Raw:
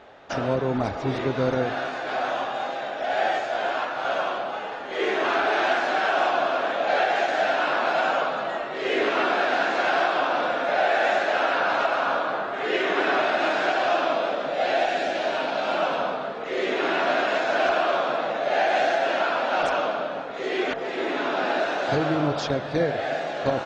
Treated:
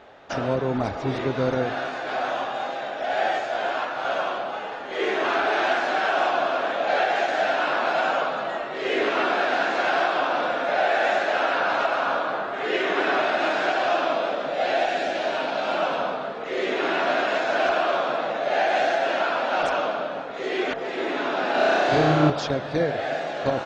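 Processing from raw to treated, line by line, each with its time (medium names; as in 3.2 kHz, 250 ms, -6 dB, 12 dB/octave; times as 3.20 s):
21.51–22.30 s: flutter echo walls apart 5.6 m, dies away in 1.1 s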